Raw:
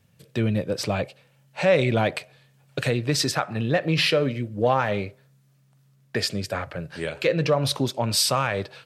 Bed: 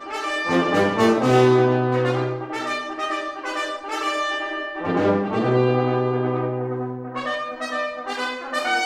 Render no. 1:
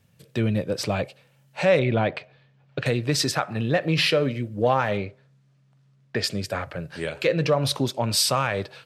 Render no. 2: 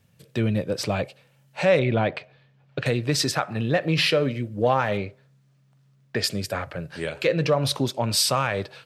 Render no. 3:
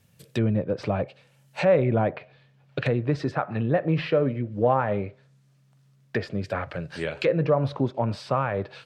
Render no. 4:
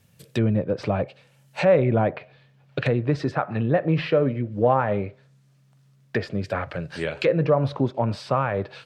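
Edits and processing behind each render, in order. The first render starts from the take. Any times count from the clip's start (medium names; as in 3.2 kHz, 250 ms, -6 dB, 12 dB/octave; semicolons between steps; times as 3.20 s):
1.79–2.86 s: distance through air 200 m; 4.97–6.24 s: distance through air 90 m
4.92–6.52 s: treble shelf 11 kHz +10.5 dB
treble shelf 6 kHz +5.5 dB; low-pass that closes with the level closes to 1.3 kHz, closed at -21.5 dBFS
trim +2 dB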